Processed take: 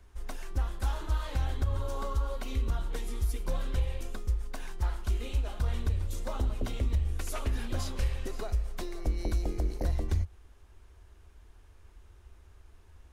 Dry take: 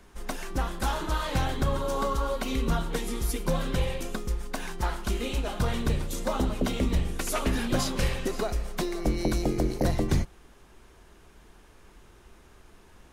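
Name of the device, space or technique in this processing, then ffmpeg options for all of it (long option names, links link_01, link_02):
car stereo with a boomy subwoofer: -af "lowshelf=frequency=110:width_type=q:width=3:gain=8.5,alimiter=limit=-11dB:level=0:latency=1:release=157,volume=-9dB"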